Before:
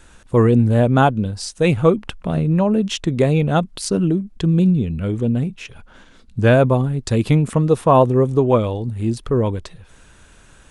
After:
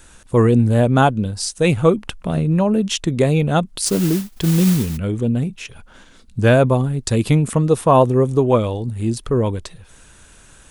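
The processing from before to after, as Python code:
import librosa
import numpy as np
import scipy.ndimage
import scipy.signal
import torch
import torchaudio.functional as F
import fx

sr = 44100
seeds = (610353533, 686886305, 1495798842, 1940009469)

y = fx.high_shelf(x, sr, hz=6500.0, db=10.5)
y = fx.mod_noise(y, sr, seeds[0], snr_db=14, at=(3.85, 4.96), fade=0.02)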